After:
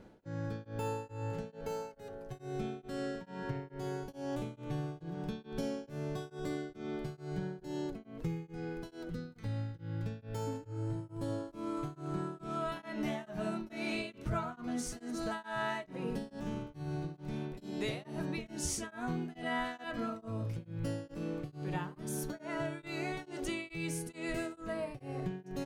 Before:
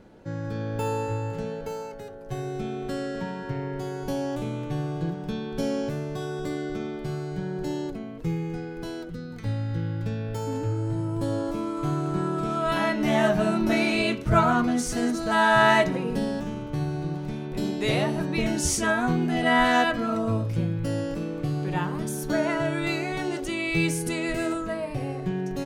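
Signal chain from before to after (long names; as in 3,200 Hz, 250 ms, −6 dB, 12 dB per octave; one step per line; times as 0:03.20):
downward compressor 5 to 1, threshold −29 dBFS, peak gain reduction 13.5 dB
tremolo along a rectified sine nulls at 2.3 Hz
level −3.5 dB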